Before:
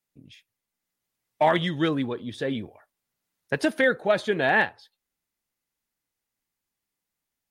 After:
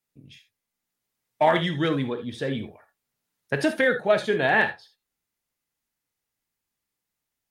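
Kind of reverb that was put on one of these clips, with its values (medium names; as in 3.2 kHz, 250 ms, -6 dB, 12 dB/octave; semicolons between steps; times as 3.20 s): gated-style reverb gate 100 ms flat, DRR 7 dB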